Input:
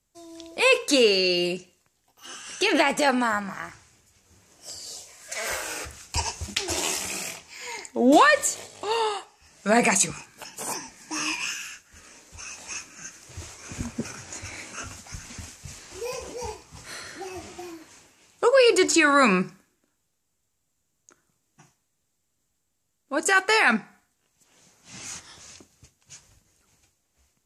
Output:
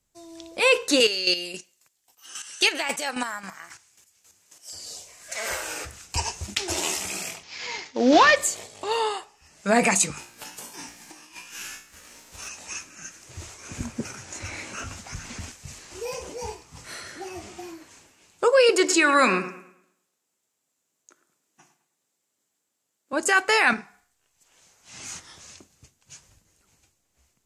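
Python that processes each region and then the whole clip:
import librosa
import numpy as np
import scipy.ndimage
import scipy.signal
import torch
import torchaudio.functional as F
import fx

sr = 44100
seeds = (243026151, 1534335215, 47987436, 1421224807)

y = fx.chain(x, sr, fx.tilt_eq(slope=3.0),
    fx.chopper(hz=3.7, depth_pct=65, duty_pct=25), at=(1.0, 4.73))
y = fx.chain(y, sr, fx.cvsd(bps=32000),
    fx.highpass(hz=83.0, slope=6),
    fx.high_shelf(hz=2200.0, db=7.5), at=(7.43, 8.36))
y = fx.envelope_flatten(y, sr, power=0.6, at=(10.17, 12.47), fade=0.02)
y = fx.over_compress(y, sr, threshold_db=-36.0, ratio=-0.5, at=(10.17, 12.47), fade=0.02)
y = fx.comb_fb(y, sr, f0_hz=58.0, decay_s=0.48, harmonics='all', damping=0.0, mix_pct=80, at=(10.17, 12.47), fade=0.02)
y = fx.chain(y, sr, fx.leveller(passes=1),
    fx.high_shelf(hz=8600.0, db=-9.0),
    fx.band_squash(depth_pct=40), at=(14.4, 15.52))
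y = fx.chain(y, sr, fx.highpass(hz=270.0, slope=12),
    fx.echo_bbd(ms=105, stages=2048, feedback_pct=37, wet_db=-12.5), at=(18.69, 23.13))
y = fx.chain(y, sr, fx.peak_eq(hz=200.0, db=-9.5, octaves=1.9),
    fx.doubler(ms=46.0, db=-10.5), at=(23.73, 24.99))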